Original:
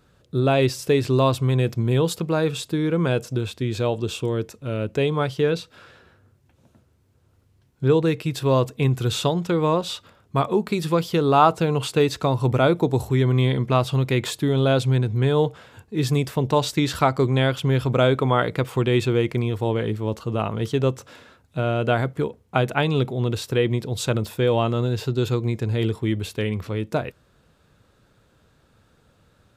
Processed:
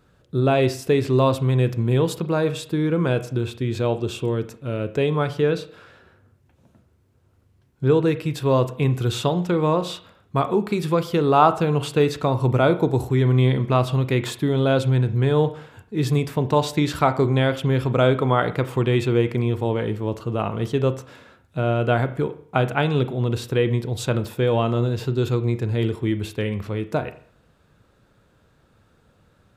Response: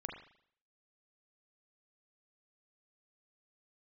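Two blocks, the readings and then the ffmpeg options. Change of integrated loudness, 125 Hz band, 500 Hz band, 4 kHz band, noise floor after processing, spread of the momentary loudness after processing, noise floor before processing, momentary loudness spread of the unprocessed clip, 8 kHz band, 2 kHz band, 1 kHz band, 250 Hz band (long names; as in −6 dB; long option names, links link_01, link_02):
+0.5 dB, +1.0 dB, +0.5 dB, −2.5 dB, −60 dBFS, 7 LU, −61 dBFS, 7 LU, −3.0 dB, 0.0 dB, +0.5 dB, +0.5 dB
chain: -filter_complex "[0:a]asplit=2[link_01][link_02];[1:a]atrim=start_sample=2205,asetrate=48510,aresample=44100,lowpass=3200[link_03];[link_02][link_03]afir=irnorm=-1:irlink=0,volume=-3.5dB[link_04];[link_01][link_04]amix=inputs=2:normalize=0,volume=-2.5dB"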